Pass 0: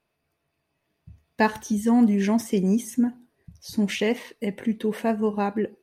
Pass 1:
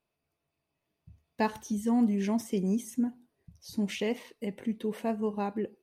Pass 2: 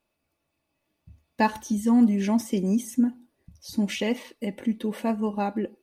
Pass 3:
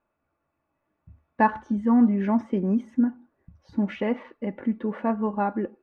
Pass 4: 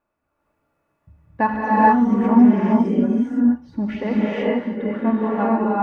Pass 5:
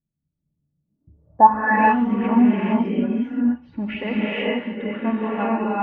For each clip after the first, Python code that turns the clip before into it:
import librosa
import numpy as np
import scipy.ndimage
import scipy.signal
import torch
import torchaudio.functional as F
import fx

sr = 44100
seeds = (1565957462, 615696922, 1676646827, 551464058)

y1 = fx.peak_eq(x, sr, hz=1700.0, db=-5.0, octaves=0.52)
y1 = y1 * librosa.db_to_amplitude(-7.0)
y2 = y1 + 0.41 * np.pad(y1, (int(3.5 * sr / 1000.0), 0))[:len(y1)]
y2 = y2 * librosa.db_to_amplitude(5.0)
y3 = fx.lowpass_res(y2, sr, hz=1400.0, q=2.1)
y4 = fx.rev_gated(y3, sr, seeds[0], gate_ms=490, shape='rising', drr_db=-6.5)
y5 = fx.filter_sweep_lowpass(y4, sr, from_hz=160.0, to_hz=2700.0, start_s=0.83, end_s=1.86, q=5.1)
y5 = y5 * librosa.db_to_amplitude(-3.5)